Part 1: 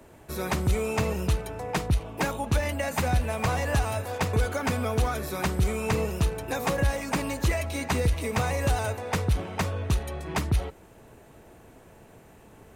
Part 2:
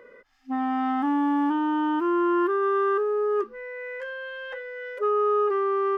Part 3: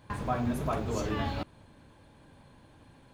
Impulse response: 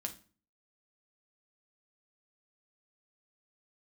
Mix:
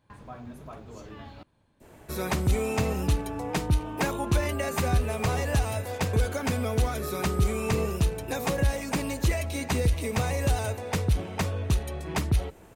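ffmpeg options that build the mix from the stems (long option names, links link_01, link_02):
-filter_complex "[0:a]adynamicequalizer=threshold=0.00631:dfrequency=1200:dqfactor=0.8:tfrequency=1200:tqfactor=0.8:attack=5:release=100:ratio=0.375:range=2.5:mode=cutabove:tftype=bell,adelay=1800,volume=0.5dB[link_01];[1:a]adelay=2000,volume=-14dB[link_02];[2:a]volume=-12dB[link_03];[link_01][link_02][link_03]amix=inputs=3:normalize=0"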